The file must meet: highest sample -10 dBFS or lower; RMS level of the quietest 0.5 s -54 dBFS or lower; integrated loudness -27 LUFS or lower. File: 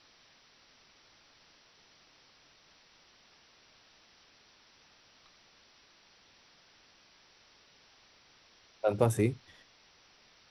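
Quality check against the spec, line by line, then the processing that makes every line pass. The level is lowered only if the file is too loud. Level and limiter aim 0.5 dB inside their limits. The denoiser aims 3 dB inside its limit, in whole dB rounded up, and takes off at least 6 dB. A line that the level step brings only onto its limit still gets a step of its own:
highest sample -11.0 dBFS: pass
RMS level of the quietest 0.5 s -63 dBFS: pass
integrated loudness -31.0 LUFS: pass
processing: none needed

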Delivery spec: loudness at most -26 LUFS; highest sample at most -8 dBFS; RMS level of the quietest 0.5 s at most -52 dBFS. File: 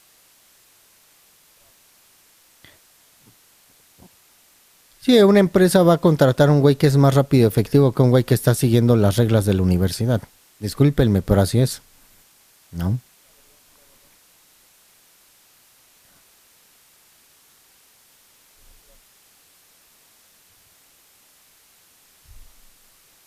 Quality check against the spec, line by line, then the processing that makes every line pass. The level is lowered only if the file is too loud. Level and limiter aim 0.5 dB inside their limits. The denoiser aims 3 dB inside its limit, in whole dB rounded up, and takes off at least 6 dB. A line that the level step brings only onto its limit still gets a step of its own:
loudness -17.0 LUFS: fail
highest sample -4.0 dBFS: fail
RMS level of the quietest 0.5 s -55 dBFS: pass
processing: trim -9.5 dB

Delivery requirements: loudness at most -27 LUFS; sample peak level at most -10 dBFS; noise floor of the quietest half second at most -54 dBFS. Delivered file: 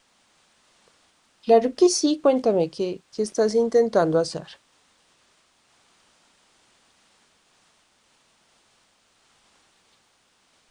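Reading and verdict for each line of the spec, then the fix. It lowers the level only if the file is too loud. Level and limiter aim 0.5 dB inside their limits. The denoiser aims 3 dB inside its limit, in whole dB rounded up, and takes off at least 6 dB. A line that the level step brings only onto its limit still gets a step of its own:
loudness -21.5 LUFS: fail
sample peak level -5.0 dBFS: fail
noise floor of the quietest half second -64 dBFS: pass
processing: trim -6 dB

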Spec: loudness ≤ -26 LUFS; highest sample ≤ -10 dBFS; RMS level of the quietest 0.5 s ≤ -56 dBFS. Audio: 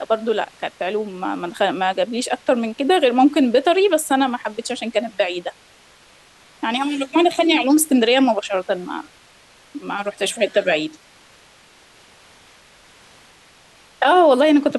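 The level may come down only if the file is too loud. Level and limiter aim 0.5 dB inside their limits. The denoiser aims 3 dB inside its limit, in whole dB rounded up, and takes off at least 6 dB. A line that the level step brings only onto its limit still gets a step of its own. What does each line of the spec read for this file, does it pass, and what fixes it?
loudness -18.5 LUFS: fail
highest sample -5.0 dBFS: fail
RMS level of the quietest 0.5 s -50 dBFS: fail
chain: trim -8 dB

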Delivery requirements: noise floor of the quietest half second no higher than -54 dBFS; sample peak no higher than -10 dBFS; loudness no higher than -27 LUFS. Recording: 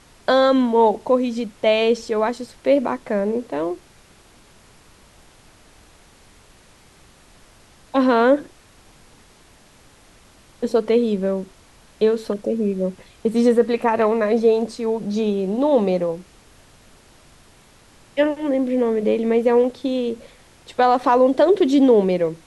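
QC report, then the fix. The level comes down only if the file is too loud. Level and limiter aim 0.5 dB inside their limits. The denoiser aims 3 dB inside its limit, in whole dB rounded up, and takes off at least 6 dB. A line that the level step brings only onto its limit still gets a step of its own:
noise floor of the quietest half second -51 dBFS: fail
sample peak -5.5 dBFS: fail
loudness -19.5 LUFS: fail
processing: trim -8 dB

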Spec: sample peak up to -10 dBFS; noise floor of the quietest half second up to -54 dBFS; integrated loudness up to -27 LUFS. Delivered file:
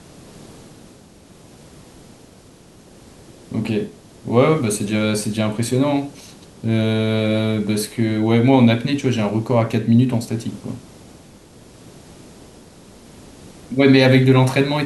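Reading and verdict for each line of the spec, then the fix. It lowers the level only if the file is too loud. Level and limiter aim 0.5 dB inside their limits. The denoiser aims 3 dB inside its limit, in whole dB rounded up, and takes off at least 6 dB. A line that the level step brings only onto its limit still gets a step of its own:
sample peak -1.5 dBFS: fail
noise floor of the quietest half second -46 dBFS: fail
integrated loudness -18.0 LUFS: fail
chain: trim -9.5 dB

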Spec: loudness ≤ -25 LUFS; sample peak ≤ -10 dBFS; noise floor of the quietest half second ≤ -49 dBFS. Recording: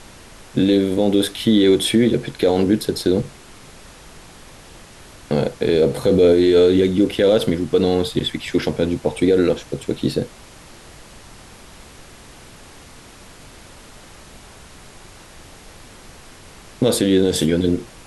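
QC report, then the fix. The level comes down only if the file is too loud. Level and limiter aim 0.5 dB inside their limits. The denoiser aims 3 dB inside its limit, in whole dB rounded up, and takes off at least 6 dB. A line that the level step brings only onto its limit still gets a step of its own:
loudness -18.0 LUFS: fail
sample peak -5.5 dBFS: fail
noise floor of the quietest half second -42 dBFS: fail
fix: trim -7.5 dB

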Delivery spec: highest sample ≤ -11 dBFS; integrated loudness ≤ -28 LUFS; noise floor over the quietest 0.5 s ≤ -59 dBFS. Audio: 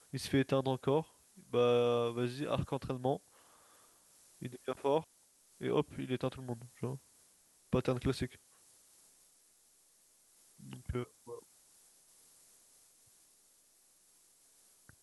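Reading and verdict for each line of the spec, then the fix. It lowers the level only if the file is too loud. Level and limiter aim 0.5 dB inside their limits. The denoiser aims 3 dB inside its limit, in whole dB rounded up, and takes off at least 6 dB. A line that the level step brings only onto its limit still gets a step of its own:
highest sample -18.0 dBFS: pass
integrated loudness -35.5 LUFS: pass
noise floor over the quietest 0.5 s -68 dBFS: pass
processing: none needed

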